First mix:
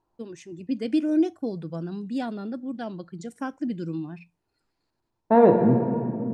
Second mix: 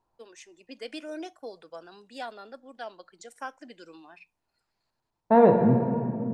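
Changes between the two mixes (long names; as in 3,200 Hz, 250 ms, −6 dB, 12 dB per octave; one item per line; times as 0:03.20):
first voice: add Bessel high-pass filter 600 Hz, order 4
master: add parametric band 330 Hz −7 dB 0.52 octaves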